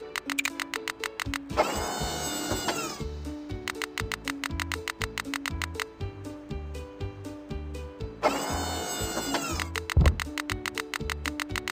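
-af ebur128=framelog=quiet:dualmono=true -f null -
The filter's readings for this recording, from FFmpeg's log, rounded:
Integrated loudness:
  I:         -28.2 LUFS
  Threshold: -38.2 LUFS
Loudness range:
  LRA:         5.4 LU
  Threshold: -48.7 LUFS
  LRA low:   -31.5 LUFS
  LRA high:  -26.1 LUFS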